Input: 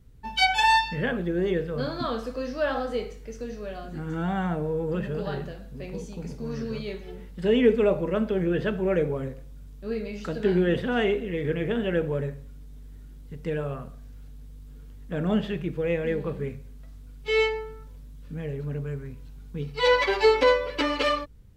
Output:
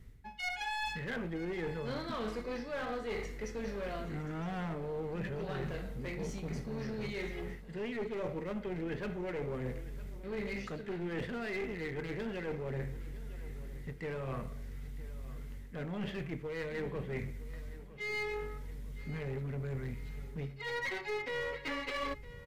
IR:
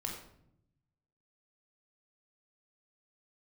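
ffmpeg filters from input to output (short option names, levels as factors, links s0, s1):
-af "equalizer=f=2100:w=4.4:g=12.5,areverse,acompressor=threshold=0.02:ratio=16,areverse,aeval=exprs='clip(val(0),-1,0.0133)':c=same,aecho=1:1:924|1848|2772|3696:0.141|0.0678|0.0325|0.0156,asetrate=42336,aresample=44100,volume=1.12"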